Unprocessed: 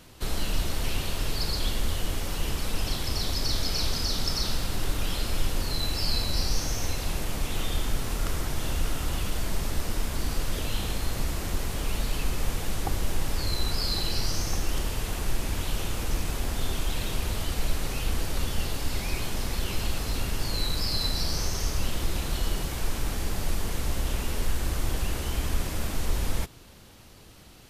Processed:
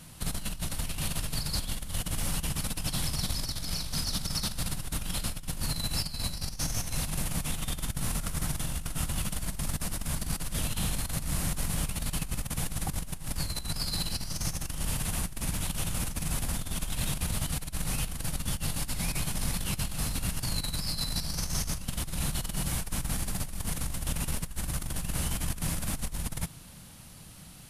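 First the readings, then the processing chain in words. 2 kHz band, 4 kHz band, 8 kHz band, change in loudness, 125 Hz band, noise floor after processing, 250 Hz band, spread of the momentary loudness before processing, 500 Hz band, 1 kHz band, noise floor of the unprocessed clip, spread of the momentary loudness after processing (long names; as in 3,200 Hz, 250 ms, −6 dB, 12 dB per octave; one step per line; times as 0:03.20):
−4.0 dB, −4.0 dB, +2.5 dB, −2.0 dB, −1.5 dB, −46 dBFS, −1.0 dB, 4 LU, −8.5 dB, −4.5 dB, −48 dBFS, 4 LU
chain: graphic EQ with 15 bands 160 Hz +10 dB, 400 Hz −9 dB, 10,000 Hz +11 dB
compressor whose output falls as the input rises −27 dBFS, ratio −0.5
level −3.5 dB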